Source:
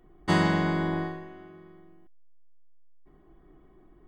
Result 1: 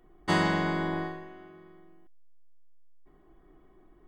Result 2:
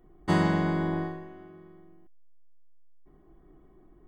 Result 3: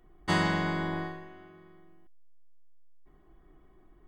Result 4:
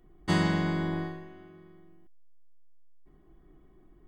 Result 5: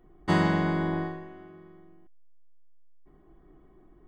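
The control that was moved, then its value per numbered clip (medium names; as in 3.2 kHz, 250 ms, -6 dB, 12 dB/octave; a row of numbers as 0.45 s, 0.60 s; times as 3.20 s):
peaking EQ, frequency: 100 Hz, 3.7 kHz, 270 Hz, 830 Hz, 11 kHz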